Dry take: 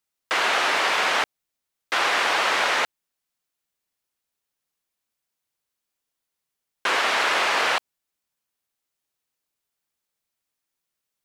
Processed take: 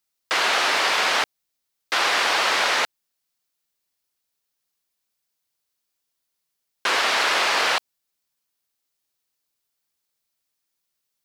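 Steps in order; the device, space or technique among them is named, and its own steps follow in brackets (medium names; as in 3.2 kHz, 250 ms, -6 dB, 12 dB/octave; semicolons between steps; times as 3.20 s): presence and air boost (peaking EQ 4.7 kHz +4.5 dB 0.89 oct; treble shelf 10 kHz +6 dB)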